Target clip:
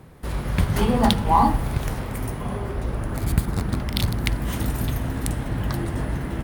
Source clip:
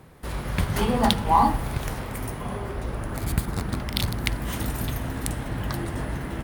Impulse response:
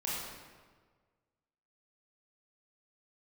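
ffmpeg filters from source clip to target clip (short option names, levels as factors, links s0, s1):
-af "lowshelf=f=420:g=4.5"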